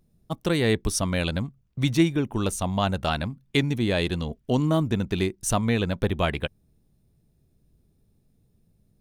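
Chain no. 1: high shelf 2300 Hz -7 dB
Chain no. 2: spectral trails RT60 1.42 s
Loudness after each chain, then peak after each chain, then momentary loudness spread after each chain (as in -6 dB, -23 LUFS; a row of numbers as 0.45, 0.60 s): -26.5, -22.5 LUFS; -8.0, -4.0 dBFS; 8, 7 LU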